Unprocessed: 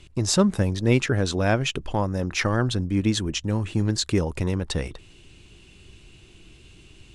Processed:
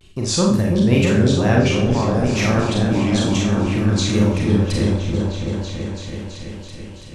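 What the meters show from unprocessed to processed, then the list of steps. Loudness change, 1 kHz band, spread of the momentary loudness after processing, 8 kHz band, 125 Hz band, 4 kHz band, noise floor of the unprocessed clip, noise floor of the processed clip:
+6.0 dB, +5.0 dB, 15 LU, +3.5 dB, +7.0 dB, +4.0 dB, -51 dBFS, -37 dBFS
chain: wow and flutter 130 cents; delay with an opening low-pass 331 ms, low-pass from 400 Hz, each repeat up 1 oct, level 0 dB; Schroeder reverb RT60 0.5 s, combs from 29 ms, DRR -1.5 dB; trim -1 dB

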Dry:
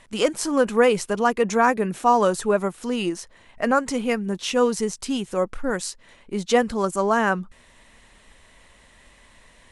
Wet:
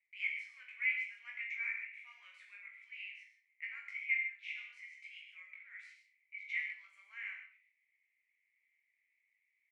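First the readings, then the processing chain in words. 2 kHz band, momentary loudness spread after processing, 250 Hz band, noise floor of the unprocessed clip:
-9.0 dB, 18 LU, under -40 dB, -54 dBFS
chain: gate -42 dBFS, range -17 dB; Butterworth band-pass 2.2 kHz, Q 7.1; differentiator; on a send: reverse bouncing-ball echo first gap 20 ms, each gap 1.1×, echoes 5; on the sum: gated-style reverb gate 170 ms flat, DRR 4 dB; trim +9 dB

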